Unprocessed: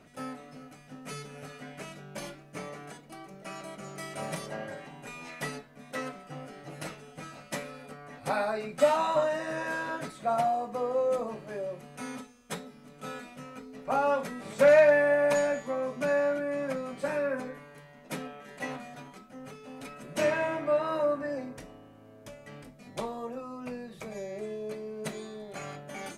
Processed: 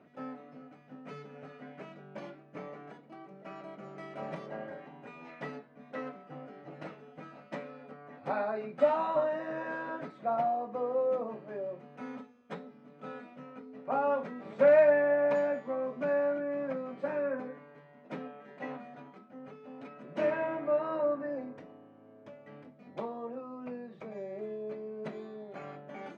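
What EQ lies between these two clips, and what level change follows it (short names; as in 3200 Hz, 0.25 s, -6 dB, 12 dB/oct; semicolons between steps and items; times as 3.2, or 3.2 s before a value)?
HPF 190 Hz 12 dB/oct; tape spacing loss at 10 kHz 38 dB; 0.0 dB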